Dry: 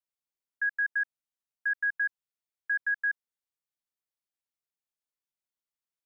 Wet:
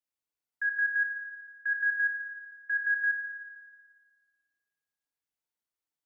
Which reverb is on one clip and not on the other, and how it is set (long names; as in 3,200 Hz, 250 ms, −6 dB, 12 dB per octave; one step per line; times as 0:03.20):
feedback delay network reverb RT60 1.9 s, low-frequency decay 0.85×, high-frequency decay 0.35×, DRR 0.5 dB
level −2 dB